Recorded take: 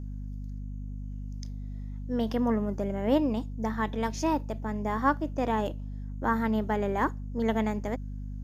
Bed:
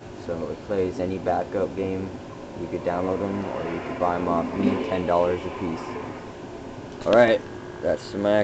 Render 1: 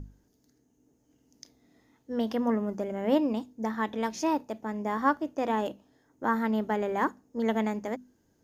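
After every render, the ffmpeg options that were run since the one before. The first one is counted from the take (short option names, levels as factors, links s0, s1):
-af "bandreject=f=50:t=h:w=6,bandreject=f=100:t=h:w=6,bandreject=f=150:t=h:w=6,bandreject=f=200:t=h:w=6,bandreject=f=250:t=h:w=6"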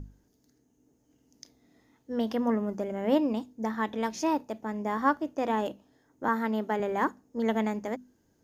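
-filter_complex "[0:a]asettb=1/sr,asplit=3[s0][s1][s2];[s0]atrim=end=6.284[s3];[s1]atrim=start=6.28:end=6.8,asetpts=PTS-STARTPTS,afade=t=in:d=0.004:c=qsin,afade=t=out:st=0.516:d=0.004:c=qsin,highpass=200[s4];[s2]atrim=start=6.796[s5];[s3][s4]acrossfade=d=0.004:c1=hsin:c2=qsin[s6];[s6][s5]acrossfade=d=0.004:c1=qsin:c2=hsin"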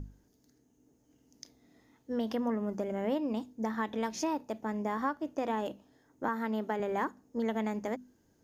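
-af "acompressor=threshold=0.0355:ratio=4"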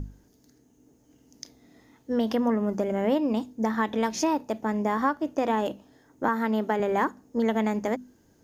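-af "volume=2.37"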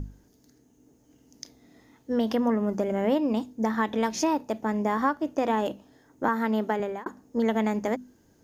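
-filter_complex "[0:a]asplit=2[s0][s1];[s0]atrim=end=7.06,asetpts=PTS-STARTPTS,afade=t=out:st=6.58:d=0.48:c=qsin[s2];[s1]atrim=start=7.06,asetpts=PTS-STARTPTS,afade=t=in:d=0.004:c=hsin[s3];[s2][s3]concat=n=2:v=0:a=1"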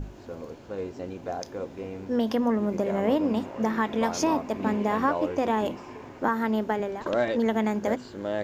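-filter_complex "[1:a]volume=0.335[s0];[0:a][s0]amix=inputs=2:normalize=0"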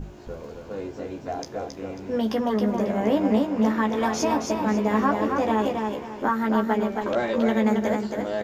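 -filter_complex "[0:a]asplit=2[s0][s1];[s1]adelay=14,volume=0.596[s2];[s0][s2]amix=inputs=2:normalize=0,aecho=1:1:272|544|816|1088:0.596|0.173|0.0501|0.0145"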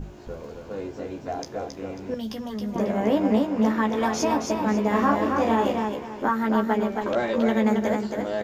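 -filter_complex "[0:a]asettb=1/sr,asplit=3[s0][s1][s2];[s0]atrim=end=2.144[s3];[s1]atrim=start=2.14:end=2.76,asetpts=PTS-STARTPTS,afade=t=in:d=0.004:c=qsin,afade=t=out:st=0.616:d=0.004:c=qsin,acrossover=split=180|3000[s4][s5][s6];[s5]acompressor=threshold=0.00562:ratio=2:attack=3.2:release=140:knee=2.83:detection=peak[s7];[s4][s7][s6]amix=inputs=3:normalize=0[s8];[s2]atrim=start=2.756[s9];[s3][s8]acrossfade=d=0.004:c1=hsin:c2=qsin[s10];[s10][s9]acrossfade=d=0.004:c1=qsin:c2=hsin,asettb=1/sr,asplit=3[s11][s12][s13];[s11]atrim=end=4.894[s14];[s12]atrim=start=4.89:end=5.85,asetpts=PTS-STARTPTS,afade=t=in:d=0.004:c=qsin,afade=t=out:st=0.956:d=0.004:c=qsin,asplit=2[s15][s16];[s16]adelay=35,volume=0.631[s17];[s15][s17]amix=inputs=2:normalize=0,atrim=end_sample=42336[s18];[s13]atrim=start=5.846[s19];[s14][s18]acrossfade=d=0.004:c1=hsin:c2=qsin[s20];[s20][s19]acrossfade=d=0.004:c1=qsin:c2=hsin"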